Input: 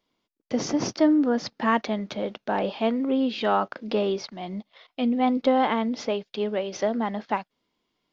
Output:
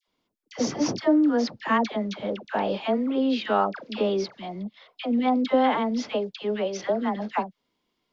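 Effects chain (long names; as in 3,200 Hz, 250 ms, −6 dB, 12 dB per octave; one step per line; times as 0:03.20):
all-pass dispersion lows, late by 79 ms, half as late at 1,000 Hz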